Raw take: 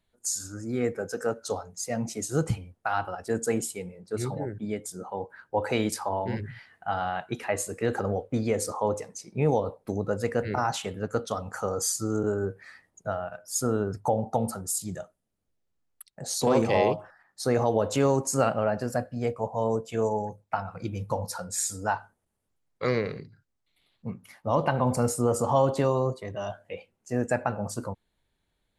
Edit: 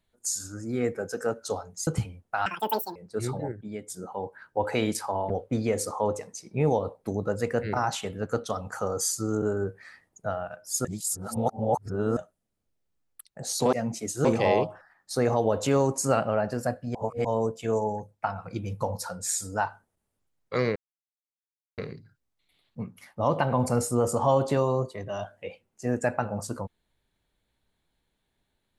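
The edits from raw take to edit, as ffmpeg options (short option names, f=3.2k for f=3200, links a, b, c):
-filter_complex "[0:a]asplit=14[a][b][c][d][e][f][g][h][i][j][k][l][m][n];[a]atrim=end=1.872[o];[b]atrim=start=2.388:end=2.984[p];[c]atrim=start=2.98:end=3.93,asetpts=PTS-STARTPTS,asetrate=84231,aresample=44100[q];[d]atrim=start=3.926:end=4.492[r];[e]atrim=start=4.488:end=4.872,asetpts=PTS-STARTPTS,volume=-5dB[s];[f]atrim=start=4.868:end=6.272[t];[g]atrim=start=8.108:end=13.662[u];[h]atrim=start=13.658:end=14.982,asetpts=PTS-STARTPTS,areverse[v];[i]atrim=start=14.978:end=16.542[w];[j]atrim=start=1.868:end=2.392[x];[k]atrim=start=16.538:end=19.242[y];[l]atrim=start=19.238:end=19.542,asetpts=PTS-STARTPTS,areverse[z];[m]atrim=start=19.538:end=23.05,asetpts=PTS-STARTPTS,afade=t=out:st=3.508:d=0.004:c=hsin,apad=pad_dur=1.02[aa];[n]atrim=start=23.05,asetpts=PTS-STARTPTS,afade=t=in:d=0.004:c=hsin[ab];[o][p]acrossfade=d=0.004:c1=hsin:c2=hsin[ac];[ac][q]acrossfade=d=0.004:c1=hsin:c2=hsin[ad];[ad][r]acrossfade=d=0.004:c1=hsin:c2=hsin[ae];[ae][s]acrossfade=d=0.004:c1=hsin:c2=hsin[af];[af][t]acrossfade=d=0.004:c1=hsin:c2=hsin[ag];[ag][u]acrossfade=d=0.004:c1=hsin:c2=hsin[ah];[ah][v]acrossfade=d=0.004:c1=hsin:c2=hsin[ai];[ai][w]acrossfade=d=0.004:c1=hsin:c2=hsin[aj];[aj][x]acrossfade=d=0.004:c1=hsin:c2=hsin[ak];[ak][y]acrossfade=d=0.004:c1=hsin:c2=hsin[al];[al][z]acrossfade=d=0.004:c1=hsin:c2=hsin[am];[aa][ab]concat=n=2:v=0:a=1[an];[am][an]acrossfade=d=0.004:c1=hsin:c2=hsin"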